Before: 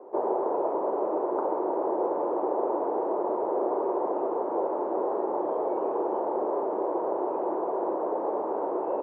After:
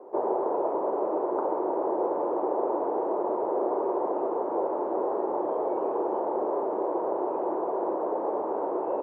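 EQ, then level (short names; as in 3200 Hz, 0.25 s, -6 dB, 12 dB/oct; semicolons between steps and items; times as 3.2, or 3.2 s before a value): bell 69 Hz +12 dB 0.61 oct; 0.0 dB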